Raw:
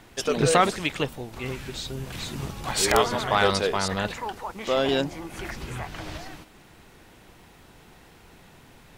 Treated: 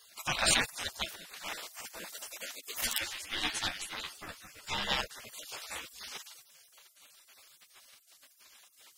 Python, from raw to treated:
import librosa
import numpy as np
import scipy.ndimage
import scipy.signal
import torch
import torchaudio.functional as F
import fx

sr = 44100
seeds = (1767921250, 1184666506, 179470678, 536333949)

y = fx.spec_dropout(x, sr, seeds[0], share_pct=21)
y = fx.highpass(y, sr, hz=110.0, slope=24, at=(5.6, 6.1), fade=0.02)
y = fx.spec_gate(y, sr, threshold_db=-20, keep='weak')
y = fx.ensemble(y, sr, at=(2.81, 4.9))
y = y * 10.0 ** (4.5 / 20.0)